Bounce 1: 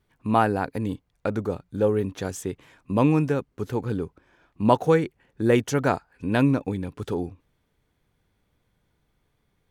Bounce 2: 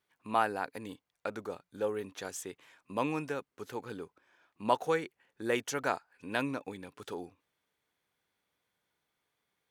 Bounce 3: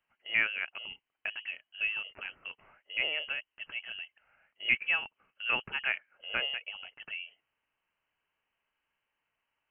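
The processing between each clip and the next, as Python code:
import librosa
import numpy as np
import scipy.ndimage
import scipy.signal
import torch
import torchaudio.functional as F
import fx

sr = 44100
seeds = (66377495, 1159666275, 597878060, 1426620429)

y1 = fx.highpass(x, sr, hz=940.0, slope=6)
y1 = y1 * librosa.db_to_amplitude(-4.0)
y2 = fx.freq_invert(y1, sr, carrier_hz=3100)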